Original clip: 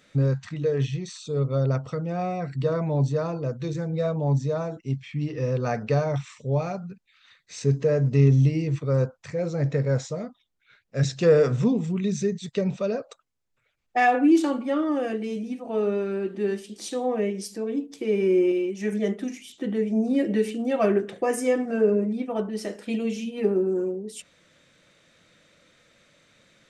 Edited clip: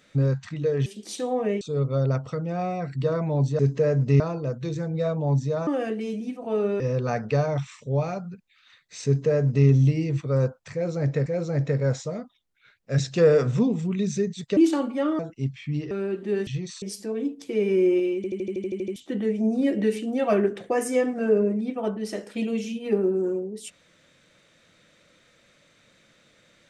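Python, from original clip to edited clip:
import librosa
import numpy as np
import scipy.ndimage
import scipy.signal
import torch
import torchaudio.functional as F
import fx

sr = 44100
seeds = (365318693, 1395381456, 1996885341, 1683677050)

y = fx.edit(x, sr, fx.swap(start_s=0.86, length_s=0.35, other_s=16.59, other_length_s=0.75),
    fx.swap(start_s=4.66, length_s=0.72, other_s=14.9, other_length_s=1.13),
    fx.duplicate(start_s=7.64, length_s=0.61, to_s=3.19),
    fx.repeat(start_s=9.31, length_s=0.53, count=2),
    fx.cut(start_s=12.62, length_s=1.66),
    fx.stutter_over(start_s=18.68, slice_s=0.08, count=10), tone=tone)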